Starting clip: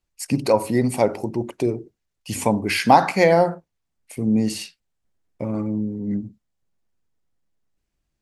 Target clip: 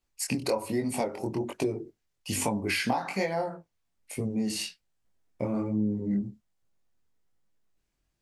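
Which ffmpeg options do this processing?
-af "lowshelf=f=360:g=-3,acompressor=threshold=-25dB:ratio=16,flanger=delay=19:depth=5.7:speed=1.2,volume=3.5dB"

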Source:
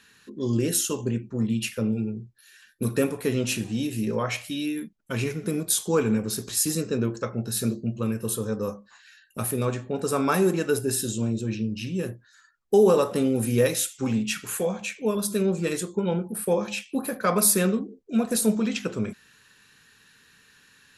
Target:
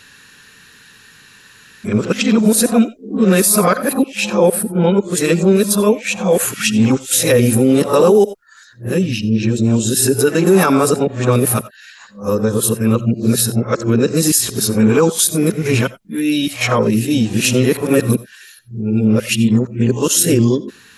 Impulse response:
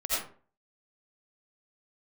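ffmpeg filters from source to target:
-filter_complex "[0:a]areverse,asplit=2[a][b];[1:a]atrim=start_sample=2205,atrim=end_sample=4410[c];[b][c]afir=irnorm=-1:irlink=0,volume=-22dB[d];[a][d]amix=inputs=2:normalize=0,alimiter=level_in=14dB:limit=-1dB:release=50:level=0:latency=1,volume=-2dB"

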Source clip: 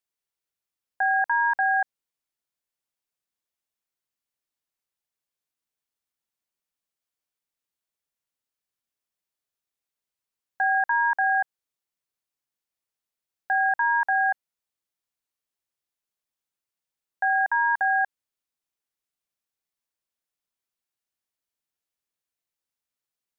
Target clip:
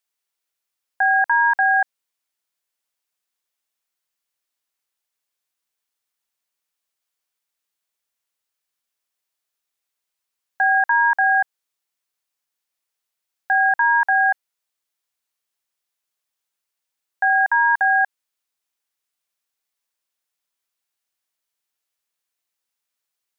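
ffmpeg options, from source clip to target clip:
-af "lowshelf=f=410:g=-11,volume=7dB"

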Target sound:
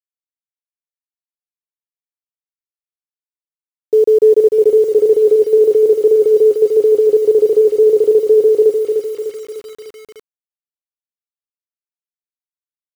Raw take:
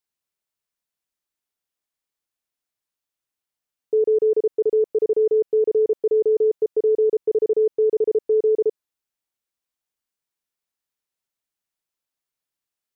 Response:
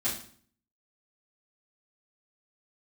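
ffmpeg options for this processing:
-af "aecho=1:1:300|600|900|1200|1500|1800:0.531|0.265|0.133|0.0664|0.0332|0.0166,acrusher=bits=7:mix=0:aa=0.000001,volume=8dB"

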